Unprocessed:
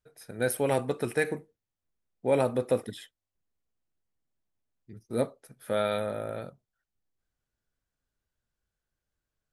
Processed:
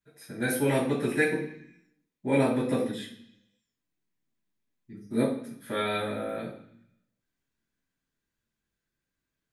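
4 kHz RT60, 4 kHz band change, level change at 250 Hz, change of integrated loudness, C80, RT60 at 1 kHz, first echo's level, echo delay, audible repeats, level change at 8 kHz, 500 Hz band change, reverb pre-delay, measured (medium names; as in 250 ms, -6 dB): 1.1 s, +3.5 dB, +6.5 dB, +1.5 dB, 10.0 dB, 0.70 s, no echo, no echo, no echo, 0.0 dB, -1.0 dB, 3 ms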